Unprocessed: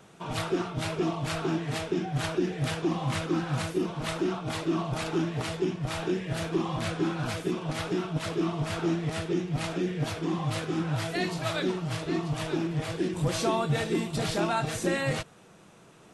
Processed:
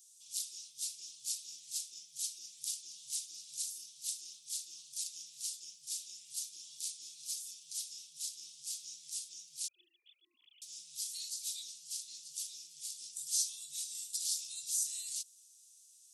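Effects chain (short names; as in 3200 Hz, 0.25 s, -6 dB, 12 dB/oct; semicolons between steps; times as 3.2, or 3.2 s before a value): 9.68–10.62 sine-wave speech; inverse Chebyshev high-pass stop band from 1700 Hz, stop band 60 dB; gain +7 dB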